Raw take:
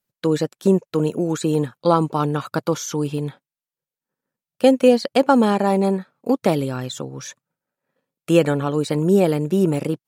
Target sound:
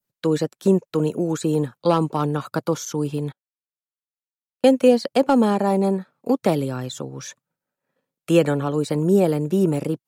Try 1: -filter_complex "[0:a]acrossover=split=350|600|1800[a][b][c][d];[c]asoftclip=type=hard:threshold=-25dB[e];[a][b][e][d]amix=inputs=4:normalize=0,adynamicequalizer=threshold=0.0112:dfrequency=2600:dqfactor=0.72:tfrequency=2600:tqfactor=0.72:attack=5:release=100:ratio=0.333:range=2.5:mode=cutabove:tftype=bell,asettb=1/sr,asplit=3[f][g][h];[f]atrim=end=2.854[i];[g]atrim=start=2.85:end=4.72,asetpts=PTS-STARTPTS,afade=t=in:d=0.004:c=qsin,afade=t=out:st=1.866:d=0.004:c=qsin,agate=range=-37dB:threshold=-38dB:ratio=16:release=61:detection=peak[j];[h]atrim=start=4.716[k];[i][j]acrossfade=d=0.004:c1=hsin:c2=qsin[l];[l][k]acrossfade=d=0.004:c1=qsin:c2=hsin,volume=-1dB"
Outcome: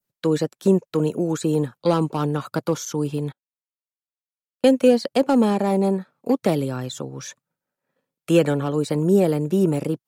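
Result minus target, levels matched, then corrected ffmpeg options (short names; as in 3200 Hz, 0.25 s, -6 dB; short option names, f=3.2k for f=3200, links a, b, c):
hard clip: distortion +7 dB
-filter_complex "[0:a]acrossover=split=350|600|1800[a][b][c][d];[c]asoftclip=type=hard:threshold=-17dB[e];[a][b][e][d]amix=inputs=4:normalize=0,adynamicequalizer=threshold=0.0112:dfrequency=2600:dqfactor=0.72:tfrequency=2600:tqfactor=0.72:attack=5:release=100:ratio=0.333:range=2.5:mode=cutabove:tftype=bell,asettb=1/sr,asplit=3[f][g][h];[f]atrim=end=2.854[i];[g]atrim=start=2.85:end=4.72,asetpts=PTS-STARTPTS,afade=t=in:d=0.004:c=qsin,afade=t=out:st=1.866:d=0.004:c=qsin,agate=range=-37dB:threshold=-38dB:ratio=16:release=61:detection=peak[j];[h]atrim=start=4.716[k];[i][j]acrossfade=d=0.004:c1=hsin:c2=qsin[l];[l][k]acrossfade=d=0.004:c1=qsin:c2=hsin,volume=-1dB"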